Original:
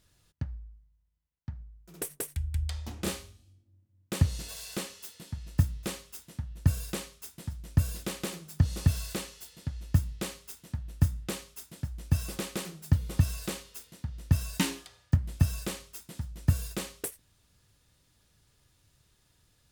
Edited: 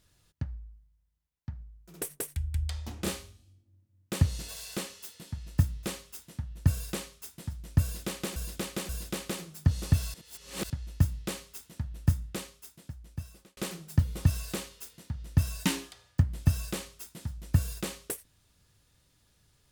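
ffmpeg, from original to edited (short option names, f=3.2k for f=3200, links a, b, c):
-filter_complex "[0:a]asplit=6[a][b][c][d][e][f];[a]atrim=end=8.362[g];[b]atrim=start=7.828:end=8.362[h];[c]atrim=start=7.828:end=9.082[i];[d]atrim=start=9.078:end=9.642,asetpts=PTS-STARTPTS,areverse[j];[e]atrim=start=9.638:end=12.51,asetpts=PTS-STARTPTS,afade=t=out:st=1.352:d=1.52[k];[f]atrim=start=12.51,asetpts=PTS-STARTPTS,afade=t=in:d=0.004:c=hsin[l];[g][h]acrossfade=d=0.004:c1=hsin:c2=hsin[m];[m][i]acrossfade=d=0.004:c1=hsin:c2=hsin[n];[n][j]acrossfade=d=0.004:c1=hsin:c2=hsin[o];[k][l]concat=n=2:v=0:a=1[p];[o][p]acrossfade=d=0.004:c1=hsin:c2=hsin"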